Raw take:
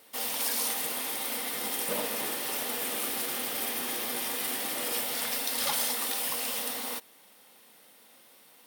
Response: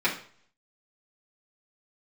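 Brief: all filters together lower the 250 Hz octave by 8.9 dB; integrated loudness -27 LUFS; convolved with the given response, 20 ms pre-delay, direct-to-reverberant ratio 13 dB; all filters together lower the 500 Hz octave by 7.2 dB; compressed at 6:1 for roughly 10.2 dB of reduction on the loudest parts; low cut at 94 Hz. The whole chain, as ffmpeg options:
-filter_complex "[0:a]highpass=94,equalizer=f=250:t=o:g=-8.5,equalizer=f=500:t=o:g=-6.5,acompressor=threshold=-37dB:ratio=6,asplit=2[a][b];[1:a]atrim=start_sample=2205,adelay=20[c];[b][c]afir=irnorm=-1:irlink=0,volume=-26.5dB[d];[a][d]amix=inputs=2:normalize=0,volume=10dB"

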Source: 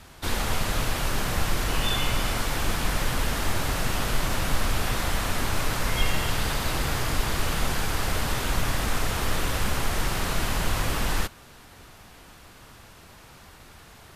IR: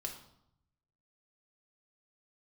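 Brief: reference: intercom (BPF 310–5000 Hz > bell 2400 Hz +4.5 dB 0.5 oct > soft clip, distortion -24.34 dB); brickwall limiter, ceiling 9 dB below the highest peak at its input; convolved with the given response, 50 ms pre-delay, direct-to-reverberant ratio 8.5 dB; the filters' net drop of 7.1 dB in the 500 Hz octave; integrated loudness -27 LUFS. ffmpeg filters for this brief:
-filter_complex "[0:a]equalizer=f=500:t=o:g=-8.5,alimiter=limit=-19dB:level=0:latency=1,asplit=2[a][b];[1:a]atrim=start_sample=2205,adelay=50[c];[b][c]afir=irnorm=-1:irlink=0,volume=-7.5dB[d];[a][d]amix=inputs=2:normalize=0,highpass=310,lowpass=5k,equalizer=f=2.4k:t=o:w=0.5:g=4.5,asoftclip=threshold=-22.5dB,volume=5dB"

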